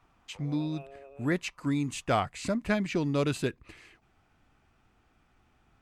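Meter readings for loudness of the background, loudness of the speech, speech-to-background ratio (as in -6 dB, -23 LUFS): -51.0 LUFS, -31.0 LUFS, 20.0 dB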